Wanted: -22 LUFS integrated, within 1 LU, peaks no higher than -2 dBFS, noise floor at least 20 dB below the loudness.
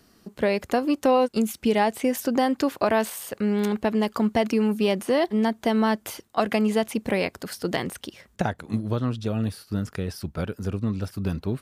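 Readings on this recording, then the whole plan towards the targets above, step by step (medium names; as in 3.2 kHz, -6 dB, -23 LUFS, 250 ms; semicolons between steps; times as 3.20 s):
loudness -25.0 LUFS; peak level -6.5 dBFS; loudness target -22.0 LUFS
-> trim +3 dB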